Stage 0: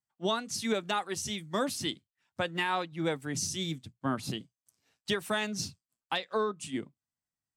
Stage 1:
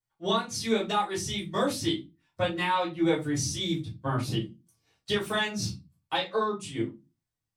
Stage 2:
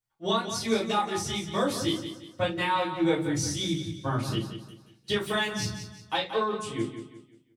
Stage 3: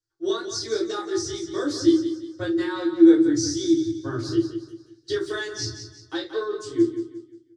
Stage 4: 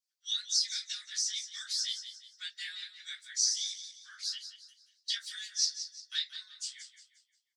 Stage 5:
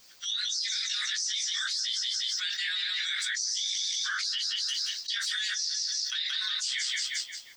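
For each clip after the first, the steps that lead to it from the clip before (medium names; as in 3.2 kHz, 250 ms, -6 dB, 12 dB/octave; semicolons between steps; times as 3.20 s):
reverberation RT60 0.25 s, pre-delay 3 ms, DRR -7 dB; trim -7.5 dB
feedback delay 177 ms, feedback 37%, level -10 dB
FFT filter 120 Hz 0 dB, 210 Hz -25 dB, 320 Hz +15 dB, 500 Hz -4 dB, 860 Hz -13 dB, 1.6 kHz +2 dB, 2.5 kHz -17 dB, 4.8 kHz +7 dB, 7.1 kHz +1 dB, 12 kHz -19 dB
harmonic-percussive split harmonic -14 dB; steep high-pass 2 kHz 36 dB/octave; trim +5 dB
peaking EQ 11 kHz -13.5 dB 0.73 oct; level flattener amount 100%; trim -3.5 dB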